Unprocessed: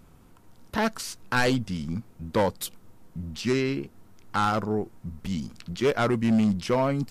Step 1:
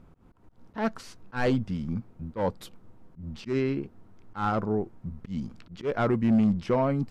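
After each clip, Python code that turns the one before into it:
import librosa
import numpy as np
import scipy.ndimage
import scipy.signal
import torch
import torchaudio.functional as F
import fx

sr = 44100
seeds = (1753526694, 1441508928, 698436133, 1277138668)

y = fx.lowpass(x, sr, hz=1300.0, slope=6)
y = fx.auto_swell(y, sr, attack_ms=125.0)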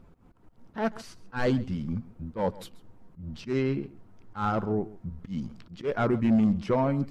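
y = fx.spec_quant(x, sr, step_db=15)
y = y + 10.0 ** (-19.5 / 20.0) * np.pad(y, (int(136 * sr / 1000.0), 0))[:len(y)]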